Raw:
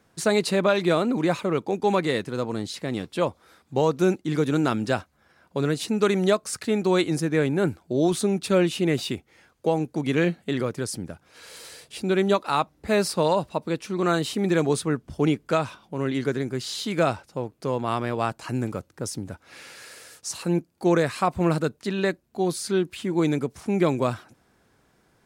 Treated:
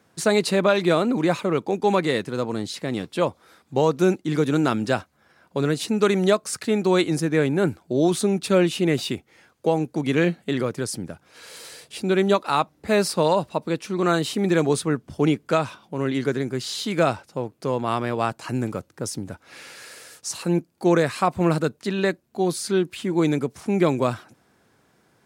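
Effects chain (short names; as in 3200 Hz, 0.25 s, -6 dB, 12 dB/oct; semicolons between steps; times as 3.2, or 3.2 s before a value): HPF 91 Hz; gain +2 dB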